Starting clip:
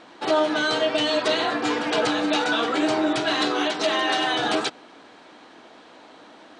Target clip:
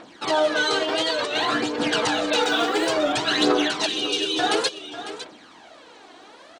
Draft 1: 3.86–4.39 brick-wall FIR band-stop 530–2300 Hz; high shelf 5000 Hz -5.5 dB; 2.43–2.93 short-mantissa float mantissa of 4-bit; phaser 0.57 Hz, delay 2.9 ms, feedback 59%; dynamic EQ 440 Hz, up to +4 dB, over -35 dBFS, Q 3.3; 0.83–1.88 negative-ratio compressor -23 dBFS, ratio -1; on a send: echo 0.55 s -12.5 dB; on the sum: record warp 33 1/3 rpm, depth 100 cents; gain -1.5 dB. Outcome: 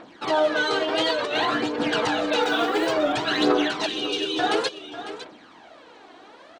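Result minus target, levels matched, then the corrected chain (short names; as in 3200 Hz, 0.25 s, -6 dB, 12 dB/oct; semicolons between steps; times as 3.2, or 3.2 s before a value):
8000 Hz band -6.5 dB
3.86–4.39 brick-wall FIR band-stop 530–2300 Hz; high shelf 5000 Hz +6.5 dB; 2.43–2.93 short-mantissa float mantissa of 4-bit; phaser 0.57 Hz, delay 2.9 ms, feedback 59%; dynamic EQ 440 Hz, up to +4 dB, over -35 dBFS, Q 3.3; 0.83–1.88 negative-ratio compressor -23 dBFS, ratio -1; on a send: echo 0.55 s -12.5 dB; on the sum: record warp 33 1/3 rpm, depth 100 cents; gain -1.5 dB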